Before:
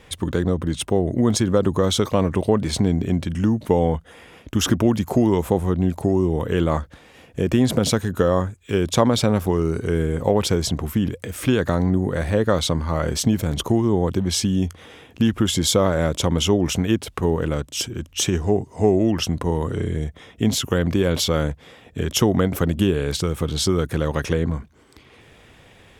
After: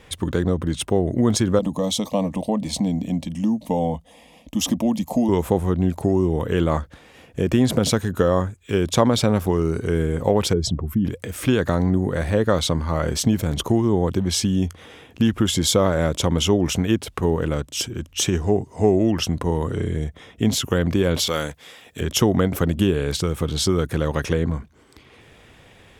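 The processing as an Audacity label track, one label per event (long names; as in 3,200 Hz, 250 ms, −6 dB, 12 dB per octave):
1.590000	5.290000	phaser with its sweep stopped centre 390 Hz, stages 6
10.530000	11.050000	expanding power law on the bin magnitudes exponent 1.6
21.270000	22.010000	spectral tilt +3 dB per octave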